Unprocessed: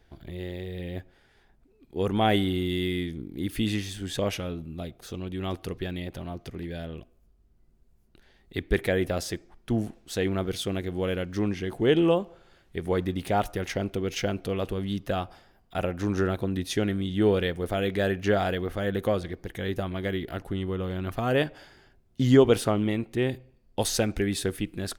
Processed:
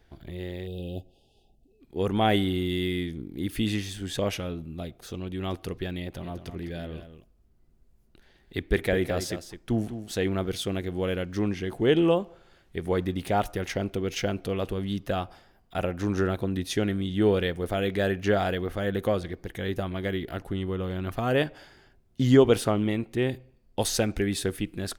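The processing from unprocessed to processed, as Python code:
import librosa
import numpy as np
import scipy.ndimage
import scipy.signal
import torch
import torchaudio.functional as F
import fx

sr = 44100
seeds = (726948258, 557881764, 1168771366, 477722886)

y = fx.spec_erase(x, sr, start_s=0.67, length_s=1.14, low_hz=840.0, high_hz=2500.0)
y = fx.echo_single(y, sr, ms=206, db=-10.5, at=(6.02, 10.19))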